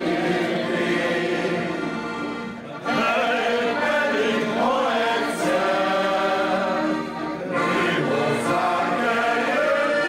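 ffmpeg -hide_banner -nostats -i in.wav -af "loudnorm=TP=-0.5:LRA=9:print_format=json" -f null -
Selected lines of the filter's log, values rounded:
"input_i" : "-21.9",
"input_tp" : "-12.2",
"input_lra" : "2.2",
"input_thresh" : "-31.9",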